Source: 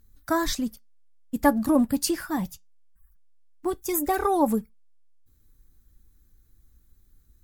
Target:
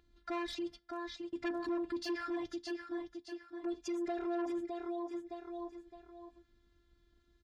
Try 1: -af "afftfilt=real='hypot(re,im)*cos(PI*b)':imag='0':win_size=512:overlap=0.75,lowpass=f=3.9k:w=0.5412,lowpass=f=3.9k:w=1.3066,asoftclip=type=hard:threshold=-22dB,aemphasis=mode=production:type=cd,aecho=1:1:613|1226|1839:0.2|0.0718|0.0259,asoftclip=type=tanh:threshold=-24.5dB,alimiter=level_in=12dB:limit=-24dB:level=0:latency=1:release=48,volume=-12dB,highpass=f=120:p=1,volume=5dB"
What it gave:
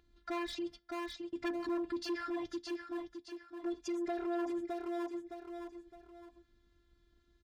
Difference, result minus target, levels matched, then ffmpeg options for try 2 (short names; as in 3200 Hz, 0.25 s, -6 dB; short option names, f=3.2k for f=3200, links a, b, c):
hard clip: distortion +19 dB
-af "afftfilt=real='hypot(re,im)*cos(PI*b)':imag='0':win_size=512:overlap=0.75,lowpass=f=3.9k:w=0.5412,lowpass=f=3.9k:w=1.3066,asoftclip=type=hard:threshold=-13.5dB,aemphasis=mode=production:type=cd,aecho=1:1:613|1226|1839:0.2|0.0718|0.0259,asoftclip=type=tanh:threshold=-24.5dB,alimiter=level_in=12dB:limit=-24dB:level=0:latency=1:release=48,volume=-12dB,highpass=f=120:p=1,volume=5dB"